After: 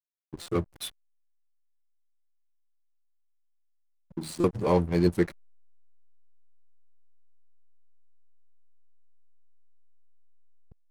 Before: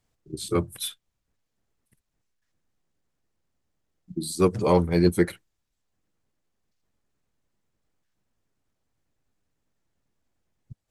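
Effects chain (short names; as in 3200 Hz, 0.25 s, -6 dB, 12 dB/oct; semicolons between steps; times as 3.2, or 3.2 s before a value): backlash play -29 dBFS; stuck buffer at 0.42/4.4, samples 256, times 6; gain -3 dB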